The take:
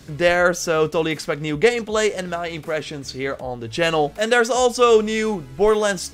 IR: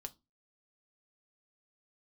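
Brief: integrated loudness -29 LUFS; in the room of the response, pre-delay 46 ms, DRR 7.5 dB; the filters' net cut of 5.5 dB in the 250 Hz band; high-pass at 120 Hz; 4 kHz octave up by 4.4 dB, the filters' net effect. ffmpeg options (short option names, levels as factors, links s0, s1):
-filter_complex "[0:a]highpass=120,equalizer=f=250:t=o:g=-7.5,equalizer=f=4000:t=o:g=6,asplit=2[s0][s1];[1:a]atrim=start_sample=2205,adelay=46[s2];[s1][s2]afir=irnorm=-1:irlink=0,volume=0.668[s3];[s0][s3]amix=inputs=2:normalize=0,volume=0.355"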